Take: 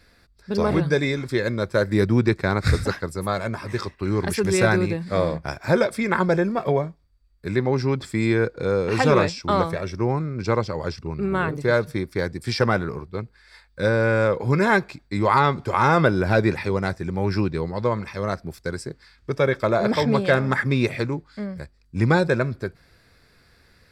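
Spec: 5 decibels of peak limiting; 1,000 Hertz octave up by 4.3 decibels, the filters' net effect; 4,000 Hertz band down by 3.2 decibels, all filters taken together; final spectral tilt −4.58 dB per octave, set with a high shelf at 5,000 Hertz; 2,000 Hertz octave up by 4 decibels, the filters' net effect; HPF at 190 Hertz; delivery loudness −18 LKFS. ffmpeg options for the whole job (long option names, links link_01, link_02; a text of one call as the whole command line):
ffmpeg -i in.wav -af "highpass=190,equalizer=frequency=1000:width_type=o:gain=4.5,equalizer=frequency=2000:width_type=o:gain=4.5,equalizer=frequency=4000:width_type=o:gain=-3.5,highshelf=frequency=5000:gain=-3.5,volume=4.5dB,alimiter=limit=-2.5dB:level=0:latency=1" out.wav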